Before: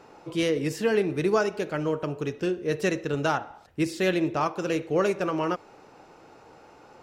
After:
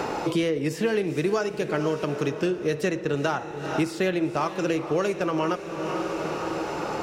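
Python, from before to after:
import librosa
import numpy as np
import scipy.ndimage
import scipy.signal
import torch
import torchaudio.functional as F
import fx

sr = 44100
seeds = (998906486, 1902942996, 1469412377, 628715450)

y = fx.echo_diffused(x, sr, ms=462, feedback_pct=48, wet_db=-14)
y = fx.band_squash(y, sr, depth_pct=100)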